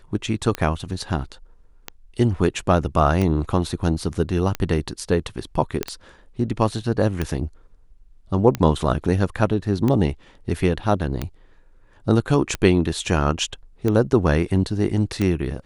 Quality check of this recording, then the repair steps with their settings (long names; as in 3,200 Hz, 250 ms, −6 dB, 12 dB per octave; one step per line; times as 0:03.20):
scratch tick 45 rpm −10 dBFS
0:05.83: click −8 dBFS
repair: click removal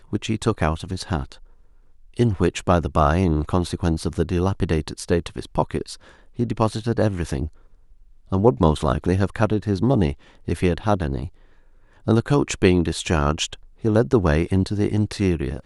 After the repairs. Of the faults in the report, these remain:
none of them is left